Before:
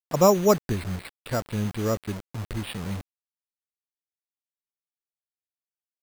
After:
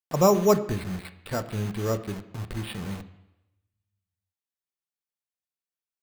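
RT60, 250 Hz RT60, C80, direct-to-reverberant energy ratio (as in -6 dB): 0.90 s, 0.90 s, 16.0 dB, 8.0 dB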